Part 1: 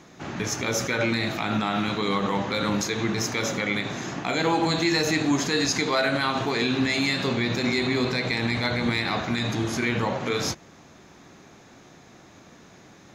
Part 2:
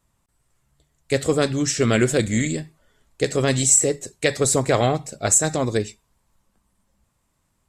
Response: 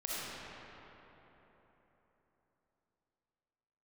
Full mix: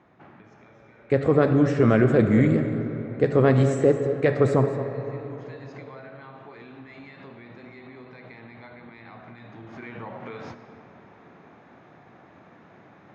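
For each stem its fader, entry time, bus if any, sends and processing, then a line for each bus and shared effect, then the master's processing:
9.49 s -11 dB -> 9.94 s -3.5 dB, 0.00 s, send -12 dB, no echo send, Chebyshev band-pass 100–2000 Hz, order 2; peaking EQ 750 Hz +4.5 dB 1.4 oct; compression 12:1, threshold -32 dBFS, peak gain reduction 16 dB; auto duck -18 dB, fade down 0.70 s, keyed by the second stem
+3.0 dB, 0.00 s, muted 4.66–6.53 s, send -10 dB, echo send -12.5 dB, Chebyshev band-pass 110–1300 Hz, order 2; peak limiter -13.5 dBFS, peak gain reduction 7 dB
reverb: on, RT60 3.9 s, pre-delay 20 ms
echo: delay 220 ms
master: none

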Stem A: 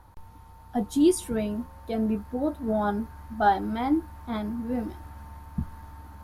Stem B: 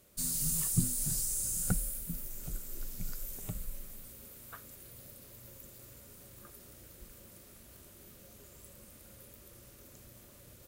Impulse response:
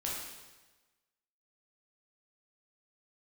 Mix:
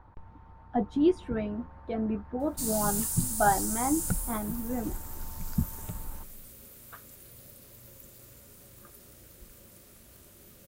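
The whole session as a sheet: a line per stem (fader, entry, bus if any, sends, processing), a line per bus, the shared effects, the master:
-4.5 dB, 0.00 s, no send, low-pass 2 kHz 12 dB/octave; harmonic-percussive split percussive +7 dB
+1.0 dB, 2.40 s, no send, none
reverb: none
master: none

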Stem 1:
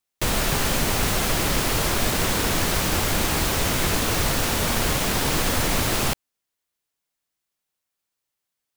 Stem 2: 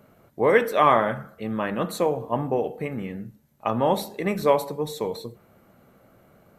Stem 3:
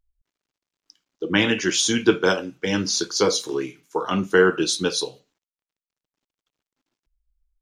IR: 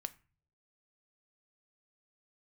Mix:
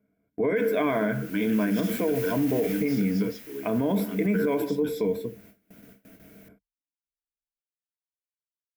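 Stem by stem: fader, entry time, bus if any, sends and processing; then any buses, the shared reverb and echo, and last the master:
1.13 s -16 dB -> 1.84 s -3.5 dB -> 2.70 s -3.5 dB -> 3.28 s -13.5 dB -> 4.47 s -13.5 dB -> 4.87 s -23.5 dB, 0.35 s, no bus, no send, high-pass 350 Hz 6 dB/octave; integer overflow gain 26 dB
+0.5 dB, 0.00 s, bus A, no send, none
-15.5 dB, 0.00 s, bus A, no send, none
bus A: 0.0 dB, rippled EQ curve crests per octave 1.7, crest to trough 13 dB; peak limiter -11 dBFS, peak gain reduction 10 dB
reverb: none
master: gate with hold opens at -41 dBFS; graphic EQ 125/250/1000/2000/4000/8000 Hz -4/+9/-11/+5/-9/-10 dB; peak limiter -16.5 dBFS, peak gain reduction 9 dB

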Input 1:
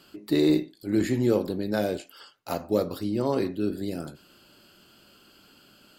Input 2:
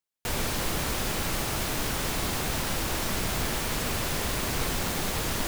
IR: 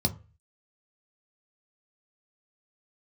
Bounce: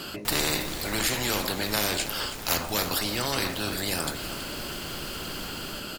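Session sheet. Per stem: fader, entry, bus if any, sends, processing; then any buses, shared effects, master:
+2.0 dB, 0.00 s, no send, echo send -13 dB, spectrum-flattening compressor 4:1
-4.0 dB, 0.00 s, no send, echo send -9 dB, auto duck -11 dB, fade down 1.80 s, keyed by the first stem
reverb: none
echo: feedback delay 326 ms, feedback 44%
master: none

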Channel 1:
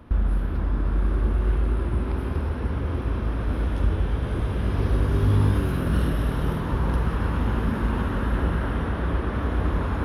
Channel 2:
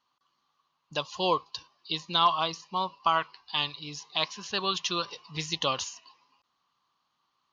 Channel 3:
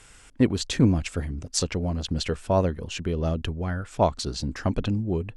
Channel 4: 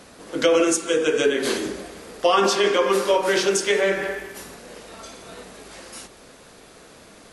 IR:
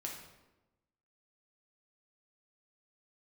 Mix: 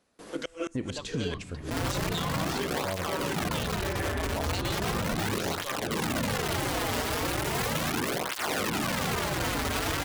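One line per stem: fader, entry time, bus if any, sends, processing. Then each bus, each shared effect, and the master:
+1.0 dB, 1.60 s, no send, integer overflow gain 22 dB; cancelling through-zero flanger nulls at 0.37 Hz, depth 6 ms
-1.0 dB, 0.00 s, no send, harmonic tremolo 1.2 Hz, depth 100%, crossover 1.9 kHz; valve stage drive 22 dB, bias 0.6
-12.5 dB, 0.35 s, send -5 dB, none
-4.5 dB, 0.00 s, no send, square tremolo 1.5 Hz, depth 60%, duty 55%; inverted gate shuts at -15 dBFS, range -32 dB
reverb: on, RT60 1.0 s, pre-delay 4 ms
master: gate with hold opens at -38 dBFS; peak limiter -21.5 dBFS, peak gain reduction 7.5 dB

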